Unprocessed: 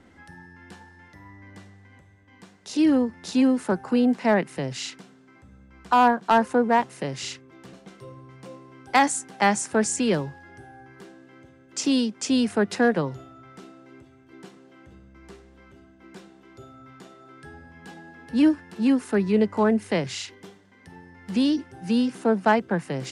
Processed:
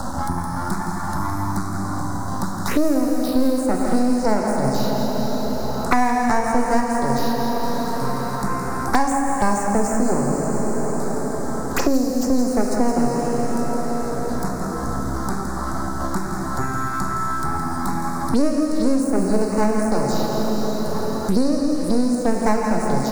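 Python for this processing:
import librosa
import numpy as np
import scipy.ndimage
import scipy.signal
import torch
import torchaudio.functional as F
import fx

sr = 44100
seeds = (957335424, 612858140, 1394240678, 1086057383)

p1 = fx.brickwall_bandstop(x, sr, low_hz=1500.0, high_hz=3700.0)
p2 = np.maximum(p1, 0.0)
p3 = fx.high_shelf(p2, sr, hz=3800.0, db=6.0)
p4 = fx.env_phaser(p3, sr, low_hz=380.0, high_hz=3400.0, full_db=-26.0)
p5 = fx.high_shelf(p4, sr, hz=7900.0, db=6.5)
p6 = p5 + fx.echo_single(p5, sr, ms=165, db=-9.0, dry=0)
p7 = fx.rev_plate(p6, sr, seeds[0], rt60_s=3.1, hf_ratio=0.75, predelay_ms=0, drr_db=0.5)
p8 = fx.band_squash(p7, sr, depth_pct=100)
y = p8 * librosa.db_to_amplitude(4.5)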